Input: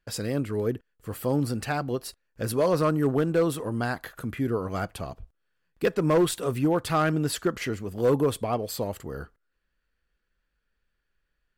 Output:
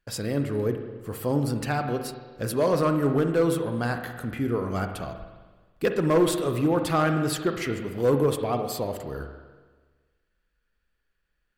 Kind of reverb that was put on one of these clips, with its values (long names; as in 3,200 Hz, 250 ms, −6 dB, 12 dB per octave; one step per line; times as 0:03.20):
spring reverb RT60 1.4 s, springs 42/57 ms, chirp 25 ms, DRR 6 dB